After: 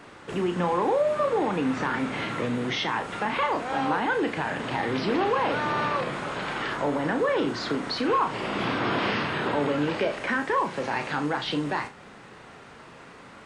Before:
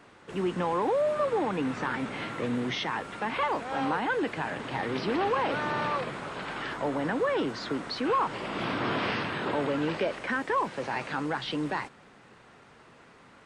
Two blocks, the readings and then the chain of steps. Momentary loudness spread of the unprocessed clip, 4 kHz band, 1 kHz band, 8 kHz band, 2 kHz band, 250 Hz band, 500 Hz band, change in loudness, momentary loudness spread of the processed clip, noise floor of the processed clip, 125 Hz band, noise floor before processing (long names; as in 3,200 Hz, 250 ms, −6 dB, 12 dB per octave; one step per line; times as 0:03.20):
6 LU, +4.0 dB, +3.5 dB, +4.0 dB, +3.5 dB, +3.5 dB, +3.0 dB, +3.5 dB, 7 LU, −47 dBFS, +3.5 dB, −55 dBFS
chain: in parallel at +2 dB: downward compressor, threshold −38 dBFS, peak gain reduction 14 dB
on the sum: flutter between parallel walls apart 5.9 metres, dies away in 0.25 s